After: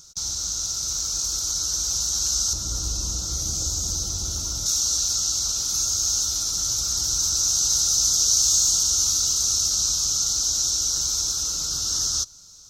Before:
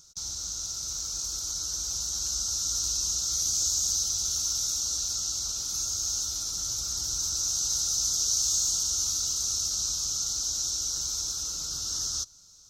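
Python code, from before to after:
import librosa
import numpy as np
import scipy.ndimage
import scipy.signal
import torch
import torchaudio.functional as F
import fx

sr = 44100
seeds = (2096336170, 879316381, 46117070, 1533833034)

y = fx.tilt_shelf(x, sr, db=7.5, hz=970.0, at=(2.53, 4.66))
y = y * librosa.db_to_amplitude(7.0)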